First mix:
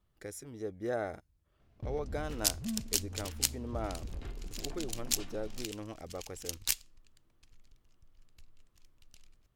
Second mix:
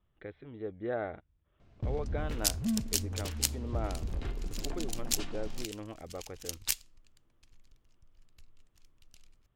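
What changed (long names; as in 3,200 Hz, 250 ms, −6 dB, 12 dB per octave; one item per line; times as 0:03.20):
speech: add Butterworth low-pass 3,700 Hz 72 dB per octave
first sound +6.0 dB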